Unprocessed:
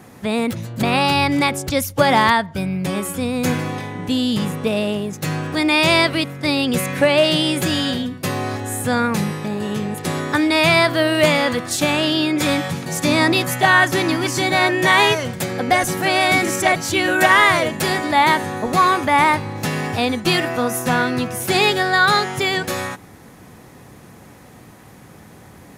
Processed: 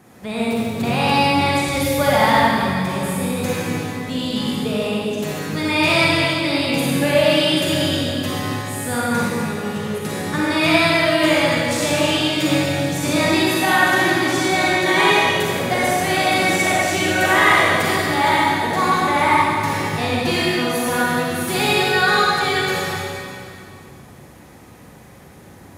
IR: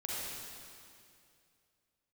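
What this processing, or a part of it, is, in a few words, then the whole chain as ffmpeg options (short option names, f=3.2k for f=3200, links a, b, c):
stairwell: -filter_complex "[1:a]atrim=start_sample=2205[a];[0:a][a]afir=irnorm=-1:irlink=0,volume=-3dB"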